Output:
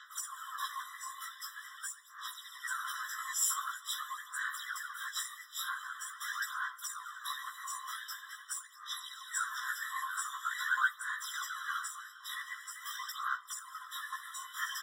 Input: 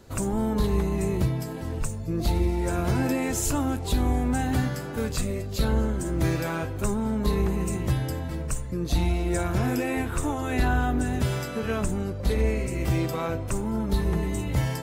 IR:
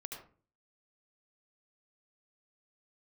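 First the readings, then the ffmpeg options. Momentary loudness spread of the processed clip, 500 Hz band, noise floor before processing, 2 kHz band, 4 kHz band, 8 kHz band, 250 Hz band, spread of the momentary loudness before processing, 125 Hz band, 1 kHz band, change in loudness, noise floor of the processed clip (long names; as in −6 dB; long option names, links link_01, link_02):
10 LU, below −40 dB, −33 dBFS, −0.5 dB, −2.5 dB, −2.5 dB, below −40 dB, 5 LU, below −40 dB, −5.5 dB, −11.0 dB, −54 dBFS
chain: -filter_complex "[0:a]acrossover=split=130|1700|3700[link_01][link_02][link_03][link_04];[link_03]acompressor=mode=upward:threshold=-48dB:ratio=2.5[link_05];[link_01][link_02][link_05][link_04]amix=inputs=4:normalize=0,aphaser=in_gain=1:out_gain=1:delay=4.8:decay=0.8:speed=0.45:type=sinusoidal,afftfilt=real='hypot(re,im)*cos(2*PI*random(0))':imag='hypot(re,im)*sin(2*PI*random(1))':win_size=512:overlap=0.75,asplit=2[link_06][link_07];[link_07]adelay=15,volume=-2dB[link_08];[link_06][link_08]amix=inputs=2:normalize=0,afftfilt=real='re*eq(mod(floor(b*sr/1024/1000),2),1)':imag='im*eq(mod(floor(b*sr/1024/1000),2),1)':win_size=1024:overlap=0.75"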